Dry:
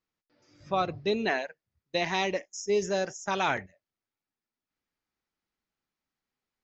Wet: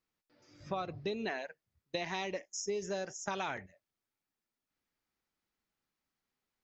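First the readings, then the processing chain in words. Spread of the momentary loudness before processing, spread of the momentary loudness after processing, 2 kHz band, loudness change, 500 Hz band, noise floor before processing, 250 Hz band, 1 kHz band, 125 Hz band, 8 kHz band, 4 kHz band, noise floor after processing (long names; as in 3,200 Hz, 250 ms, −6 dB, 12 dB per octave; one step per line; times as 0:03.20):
7 LU, 5 LU, −9.5 dB, −9.0 dB, −9.0 dB, below −85 dBFS, −8.0 dB, −9.5 dB, −7.0 dB, can't be measured, −8.5 dB, below −85 dBFS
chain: downward compressor 6 to 1, threshold −34 dBFS, peak gain reduction 11.5 dB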